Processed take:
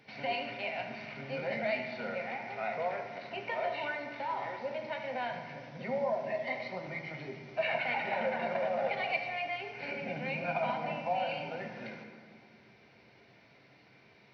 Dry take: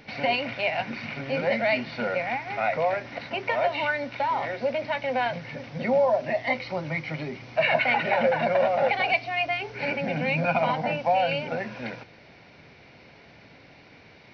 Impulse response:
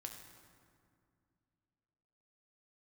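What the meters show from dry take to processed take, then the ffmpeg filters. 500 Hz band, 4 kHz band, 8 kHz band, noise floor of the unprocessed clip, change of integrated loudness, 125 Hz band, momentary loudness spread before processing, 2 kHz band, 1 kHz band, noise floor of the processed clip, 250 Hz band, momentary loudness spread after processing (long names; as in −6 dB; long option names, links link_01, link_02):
−9.5 dB, −10.0 dB, can't be measured, −52 dBFS, −9.5 dB, −11.5 dB, 10 LU, −9.5 dB, −9.0 dB, −61 dBFS, −10.0 dB, 9 LU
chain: -filter_complex "[0:a]highpass=frequency=140:poles=1[link_01];[1:a]atrim=start_sample=2205,asetrate=52920,aresample=44100[link_02];[link_01][link_02]afir=irnorm=-1:irlink=0,volume=-3.5dB"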